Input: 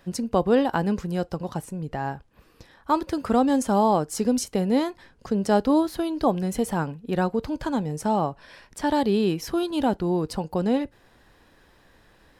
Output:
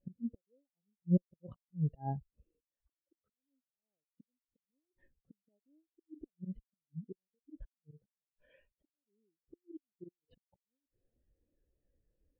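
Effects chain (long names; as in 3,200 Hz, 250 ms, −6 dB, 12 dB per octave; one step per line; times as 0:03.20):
low shelf with overshoot 750 Hz +6.5 dB, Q 1.5
gate with flip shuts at −11 dBFS, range −40 dB
volume swells 378 ms
pitch vibrato 0.45 Hz 34 cents
in parallel at −4 dB: asymmetric clip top −41 dBFS
on the sum: transistor ladder low-pass 3,300 Hz, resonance 55%
every bin expanded away from the loudest bin 2.5 to 1
level +8 dB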